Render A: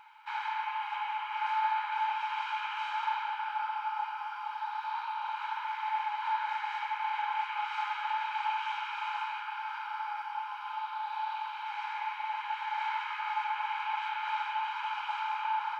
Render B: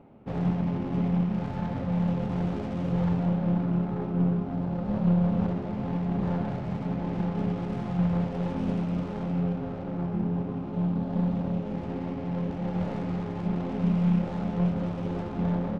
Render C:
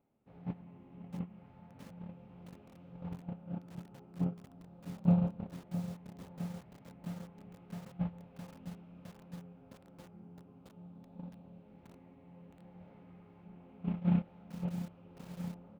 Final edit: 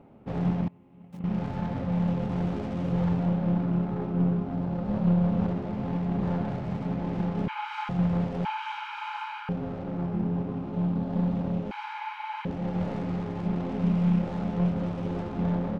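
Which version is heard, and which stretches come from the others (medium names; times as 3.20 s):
B
0.68–1.24 s: from C
7.48–7.89 s: from A
8.45–9.49 s: from A
11.71–12.45 s: from A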